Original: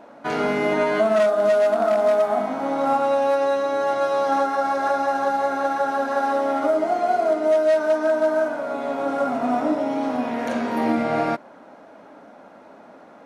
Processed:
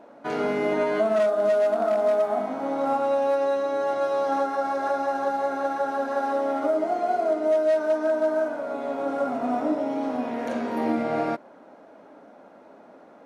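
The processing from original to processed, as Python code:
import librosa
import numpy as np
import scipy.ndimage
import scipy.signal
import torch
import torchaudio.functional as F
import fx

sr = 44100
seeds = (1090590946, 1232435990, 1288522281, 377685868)

y = fx.peak_eq(x, sr, hz=410.0, db=5.0, octaves=1.6)
y = y * 10.0 ** (-6.5 / 20.0)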